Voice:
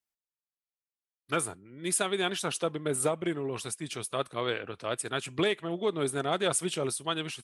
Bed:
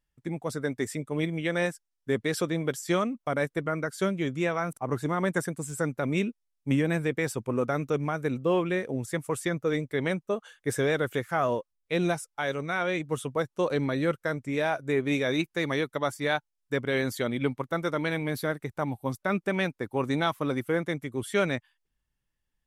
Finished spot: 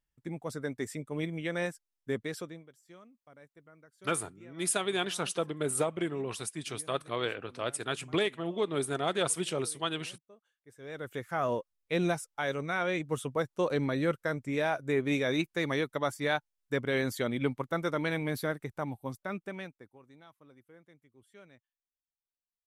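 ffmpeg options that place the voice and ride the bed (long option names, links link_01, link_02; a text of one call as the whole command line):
ffmpeg -i stem1.wav -i stem2.wav -filter_complex "[0:a]adelay=2750,volume=-1.5dB[link_01];[1:a]volume=20dB,afade=type=out:start_time=2.11:duration=0.55:silence=0.0749894,afade=type=in:start_time=10.78:duration=0.82:silence=0.0530884,afade=type=out:start_time=18.36:duration=1.63:silence=0.0446684[link_02];[link_01][link_02]amix=inputs=2:normalize=0" out.wav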